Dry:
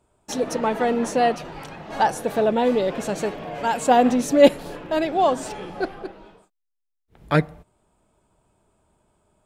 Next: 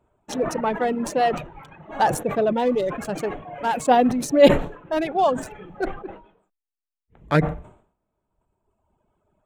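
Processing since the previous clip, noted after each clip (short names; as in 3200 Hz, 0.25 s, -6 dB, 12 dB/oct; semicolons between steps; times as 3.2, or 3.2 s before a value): Wiener smoothing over 9 samples; reverb removal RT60 1.7 s; sustainer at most 110 dB/s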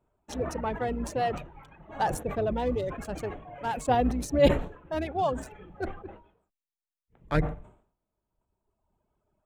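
octaver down 2 oct, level -1 dB; gain -8 dB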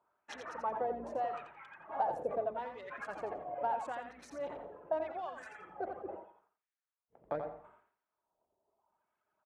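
compressor 10:1, threshold -34 dBFS, peak gain reduction 19.5 dB; wah 0.79 Hz 570–1800 Hz, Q 2.1; feedback echo 86 ms, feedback 21%, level -7 dB; gain +6 dB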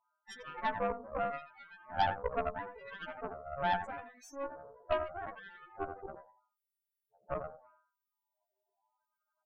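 frequency quantiser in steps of 2 st; loudest bins only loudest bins 8; added harmonics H 3 -23 dB, 6 -16 dB, 7 -28 dB, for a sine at -22 dBFS; gain +3.5 dB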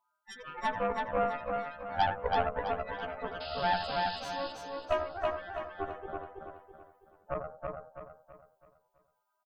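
painted sound noise, 3.4–4.2, 2500–5200 Hz -47 dBFS; on a send: feedback echo 0.328 s, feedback 40%, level -3 dB; on the sum: gain +2 dB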